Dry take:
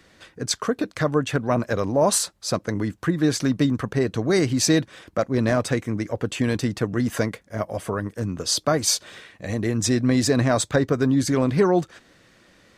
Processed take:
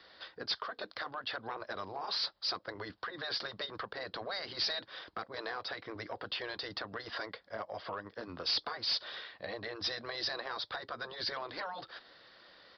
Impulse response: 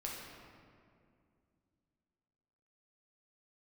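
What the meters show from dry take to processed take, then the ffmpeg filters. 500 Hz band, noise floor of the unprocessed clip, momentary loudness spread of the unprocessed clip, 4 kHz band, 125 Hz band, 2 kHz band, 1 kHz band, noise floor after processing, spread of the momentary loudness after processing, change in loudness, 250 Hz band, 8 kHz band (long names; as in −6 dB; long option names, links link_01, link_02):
−20.0 dB, −57 dBFS, 8 LU, −5.0 dB, −31.0 dB, −9.5 dB, −11.5 dB, −65 dBFS, 11 LU, −15.0 dB, −29.0 dB, −31.0 dB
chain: -filter_complex "[0:a]afftfilt=real='re*lt(hypot(re,im),0.355)':imag='im*lt(hypot(re,im),0.355)':win_size=1024:overlap=0.75,acrossover=split=480 2500:gain=0.141 1 0.0631[link_01][link_02][link_03];[link_01][link_02][link_03]amix=inputs=3:normalize=0,acompressor=threshold=-37dB:ratio=4,aexciter=amount=15:drive=3.9:freq=3700,aresample=11025,asoftclip=type=tanh:threshold=-28dB,aresample=44100"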